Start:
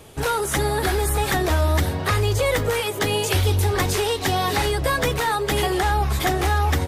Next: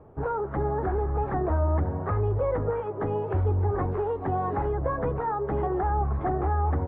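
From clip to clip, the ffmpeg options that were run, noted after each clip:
ffmpeg -i in.wav -af "lowpass=frequency=1200:width=0.5412,lowpass=frequency=1200:width=1.3066,volume=-4.5dB" out.wav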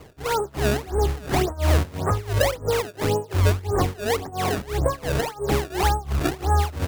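ffmpeg -i in.wav -filter_complex "[0:a]tremolo=f=2.9:d=0.92,acrossover=split=1200[link_01][link_02];[link_01]acrusher=samples=24:mix=1:aa=0.000001:lfo=1:lforange=38.4:lforate=1.8[link_03];[link_03][link_02]amix=inputs=2:normalize=0,volume=7.5dB" out.wav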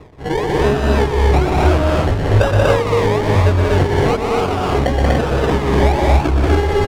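ffmpeg -i in.wav -af "acrusher=samples=28:mix=1:aa=0.000001:lfo=1:lforange=16.8:lforate=1.1,aemphasis=mode=reproduction:type=75fm,aecho=1:1:122.4|183.7|242|288.6:0.562|0.708|0.891|0.631,volume=4dB" out.wav

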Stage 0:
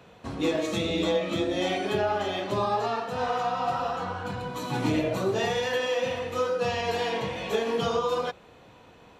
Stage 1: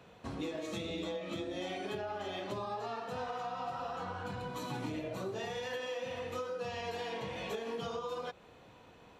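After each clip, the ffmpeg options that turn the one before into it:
ffmpeg -i in.wav -af "acompressor=threshold=-31dB:ratio=6,volume=-5dB" out.wav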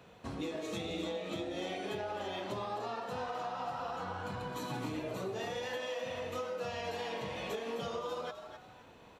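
ffmpeg -i in.wav -filter_complex "[0:a]highshelf=frequency=9800:gain=3.5,asplit=5[link_01][link_02][link_03][link_04][link_05];[link_02]adelay=259,afreqshift=130,volume=-10dB[link_06];[link_03]adelay=518,afreqshift=260,volume=-19.9dB[link_07];[link_04]adelay=777,afreqshift=390,volume=-29.8dB[link_08];[link_05]adelay=1036,afreqshift=520,volume=-39.7dB[link_09];[link_01][link_06][link_07][link_08][link_09]amix=inputs=5:normalize=0" out.wav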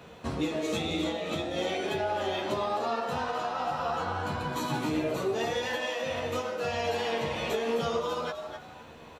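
ffmpeg -i in.wav -filter_complex "[0:a]asplit=2[link_01][link_02];[link_02]adelay=13,volume=-5dB[link_03];[link_01][link_03]amix=inputs=2:normalize=0,volume=7dB" out.wav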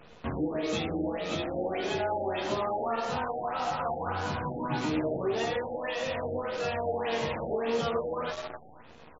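ffmpeg -i in.wav -af "acrusher=bits=7:dc=4:mix=0:aa=0.000001,afftfilt=real='re*lt(b*sr/1024,840*pow(7600/840,0.5+0.5*sin(2*PI*1.7*pts/sr)))':imag='im*lt(b*sr/1024,840*pow(7600/840,0.5+0.5*sin(2*PI*1.7*pts/sr)))':win_size=1024:overlap=0.75" out.wav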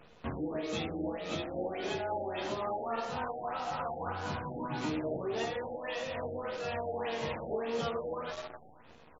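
ffmpeg -i in.wav -af "tremolo=f=3.7:d=0.29,volume=-3.5dB" out.wav

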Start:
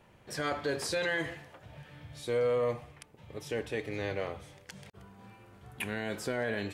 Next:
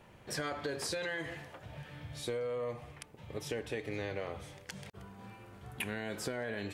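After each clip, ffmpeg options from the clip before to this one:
ffmpeg -i in.wav -af "acompressor=threshold=-36dB:ratio=12,volume=2.5dB" out.wav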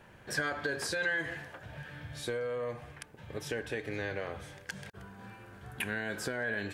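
ffmpeg -i in.wav -af "equalizer=frequency=1600:width_type=o:width=0.22:gain=11.5,volume=1dB" out.wav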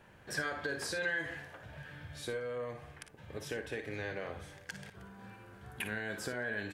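ffmpeg -i in.wav -af "aecho=1:1:46|57:0.178|0.299,volume=-3.5dB" out.wav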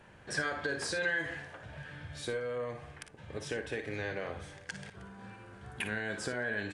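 ffmpeg -i in.wav -af "aresample=22050,aresample=44100,volume=2.5dB" out.wav

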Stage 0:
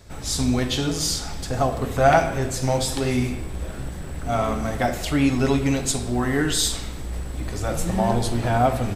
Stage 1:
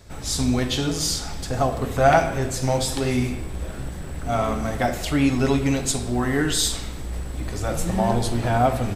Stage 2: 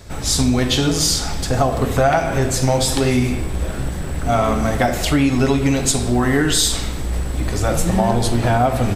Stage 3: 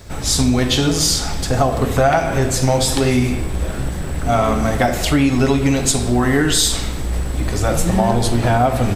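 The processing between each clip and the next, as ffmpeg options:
ffmpeg -i in.wav -af anull out.wav
ffmpeg -i in.wav -af "acompressor=threshold=-20dB:ratio=6,volume=8dB" out.wav
ffmpeg -i in.wav -af "acrusher=bits=9:mix=0:aa=0.000001,volume=1dB" out.wav

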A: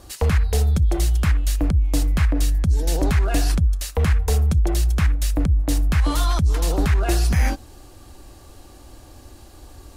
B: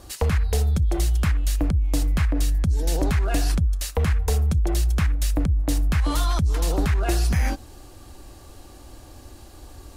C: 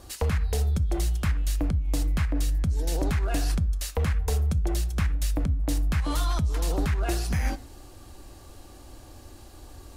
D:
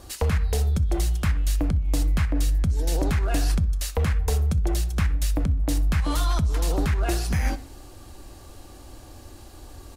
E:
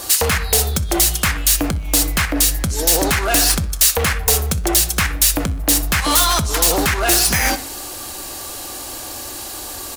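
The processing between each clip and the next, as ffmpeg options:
ffmpeg -i in.wav -af "acompressor=threshold=-17dB:ratio=6" out.wav
ffmpeg -i in.wav -filter_complex "[0:a]asplit=2[link_01][link_02];[link_02]asoftclip=type=tanh:threshold=-29dB,volume=-11dB[link_03];[link_01][link_03]amix=inputs=2:normalize=0,flanger=delay=7.5:depth=2:regen=-89:speed=1.9:shape=triangular" out.wav
ffmpeg -i in.wav -filter_complex "[0:a]asplit=2[link_01][link_02];[link_02]adelay=63,lowpass=frequency=4700:poles=1,volume=-22dB,asplit=2[link_03][link_04];[link_04]adelay=63,lowpass=frequency=4700:poles=1,volume=0.54,asplit=2[link_05][link_06];[link_06]adelay=63,lowpass=frequency=4700:poles=1,volume=0.54,asplit=2[link_07][link_08];[link_08]adelay=63,lowpass=frequency=4700:poles=1,volume=0.54[link_09];[link_01][link_03][link_05][link_07][link_09]amix=inputs=5:normalize=0,volume=2.5dB" out.wav
ffmpeg -i in.wav -filter_complex "[0:a]asplit=2[link_01][link_02];[link_02]highpass=frequency=720:poles=1,volume=20dB,asoftclip=type=tanh:threshold=-12dB[link_03];[link_01][link_03]amix=inputs=2:normalize=0,lowpass=frequency=6400:poles=1,volume=-6dB,aemphasis=mode=production:type=50fm,volume=3.5dB" out.wav

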